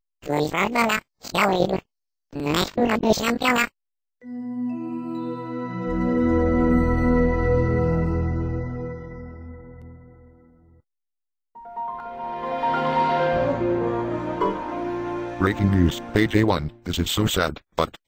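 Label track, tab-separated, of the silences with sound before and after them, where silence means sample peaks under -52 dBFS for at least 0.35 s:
1.820000	2.310000	silence
3.690000	4.220000	silence
10.800000	11.550000	silence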